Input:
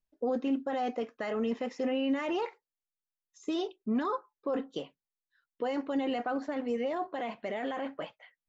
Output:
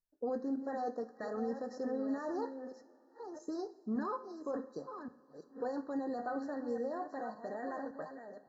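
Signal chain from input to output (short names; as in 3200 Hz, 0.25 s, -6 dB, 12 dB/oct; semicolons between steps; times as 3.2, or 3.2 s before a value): reverse delay 0.565 s, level -8.5 dB; two-slope reverb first 0.48 s, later 4 s, from -18 dB, DRR 10.5 dB; FFT band-reject 1900–3900 Hz; gain -6.5 dB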